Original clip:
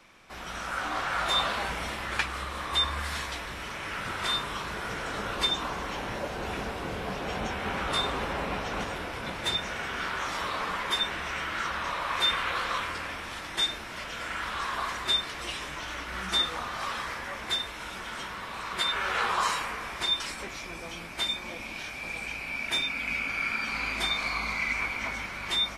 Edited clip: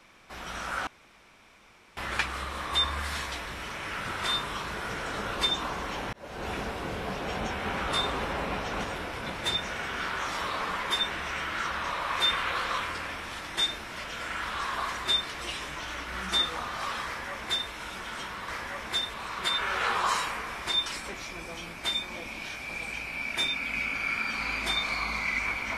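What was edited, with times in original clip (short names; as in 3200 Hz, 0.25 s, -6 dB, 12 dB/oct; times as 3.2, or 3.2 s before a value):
0.87–1.97 room tone
6.13–6.48 fade in
17.05–17.71 copy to 18.48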